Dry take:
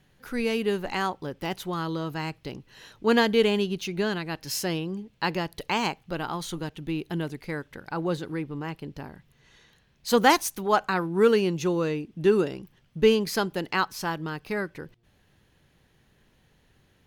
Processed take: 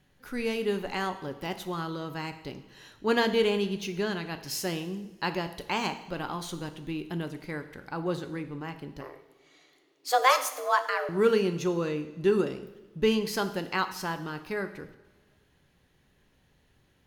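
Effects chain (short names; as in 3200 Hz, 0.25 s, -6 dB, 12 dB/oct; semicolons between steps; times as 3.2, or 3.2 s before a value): 9.01–11.09 frequency shift +260 Hz; two-slope reverb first 0.81 s, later 2.4 s, from -18 dB, DRR 8 dB; gain -3.5 dB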